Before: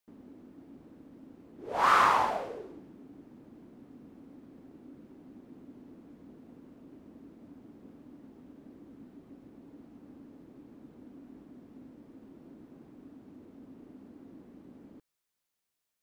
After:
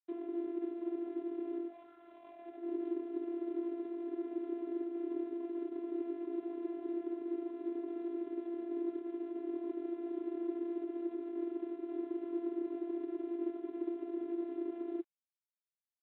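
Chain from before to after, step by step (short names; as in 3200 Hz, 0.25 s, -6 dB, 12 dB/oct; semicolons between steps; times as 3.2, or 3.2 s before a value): median filter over 41 samples; negative-ratio compressor -52 dBFS, ratio -1; vocoder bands 16, saw 342 Hz; gain +12 dB; G.726 32 kbps 8000 Hz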